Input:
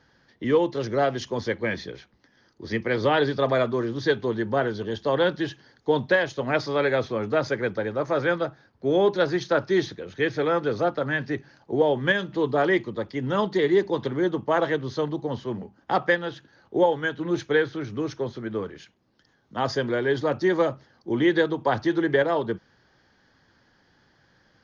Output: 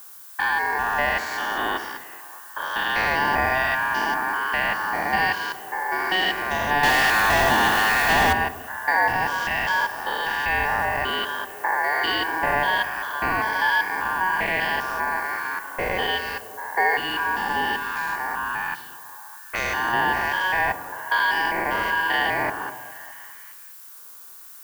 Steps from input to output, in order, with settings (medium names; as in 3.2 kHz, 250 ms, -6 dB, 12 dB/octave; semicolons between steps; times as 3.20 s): spectrogram pixelated in time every 200 ms; level-controlled noise filter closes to 710 Hz, open at -27 dBFS; in parallel at 0 dB: compression, threshold -33 dBFS, peak gain reduction 13 dB; on the sum: ring modulator 1.3 kHz; repeats whose band climbs or falls 205 ms, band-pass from 330 Hz, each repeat 0.7 oct, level -10.5 dB; harmonic tremolo 1.2 Hz, depth 50%, crossover 1.5 kHz; added noise violet -50 dBFS; 6.83–8.33 s: power-law waveshaper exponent 0.5; on a send at -14 dB: reverberation RT60 1.1 s, pre-delay 3 ms; on the sum: trim +6.5 dB